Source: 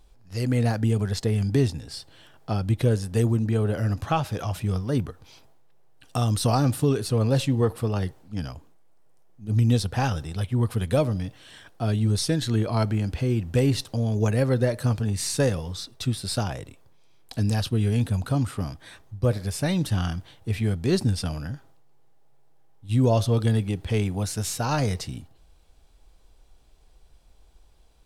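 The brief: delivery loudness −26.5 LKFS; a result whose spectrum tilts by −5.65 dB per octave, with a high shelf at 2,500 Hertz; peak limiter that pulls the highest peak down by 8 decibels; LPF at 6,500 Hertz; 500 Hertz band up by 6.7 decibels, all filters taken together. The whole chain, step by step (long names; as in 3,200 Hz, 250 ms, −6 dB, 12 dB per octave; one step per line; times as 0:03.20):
low-pass filter 6,500 Hz
parametric band 500 Hz +7.5 dB
high-shelf EQ 2,500 Hz +8.5 dB
level −2 dB
brickwall limiter −15.5 dBFS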